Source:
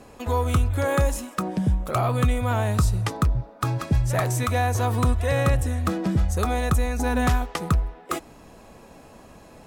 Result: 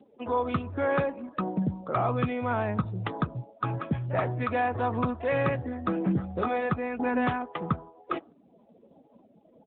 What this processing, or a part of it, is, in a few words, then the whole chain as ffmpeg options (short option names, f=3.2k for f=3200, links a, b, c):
mobile call with aggressive noise cancelling: -filter_complex "[0:a]asplit=3[a][b][c];[a]afade=t=out:st=5.96:d=0.02[d];[b]asplit=2[e][f];[f]adelay=22,volume=-8dB[g];[e][g]amix=inputs=2:normalize=0,afade=t=in:st=5.96:d=0.02,afade=t=out:st=6.71:d=0.02[h];[c]afade=t=in:st=6.71:d=0.02[i];[d][h][i]amix=inputs=3:normalize=0,highpass=150,afftdn=nr=34:nf=-39,volume=-1.5dB" -ar 8000 -c:a libopencore_amrnb -b:a 10200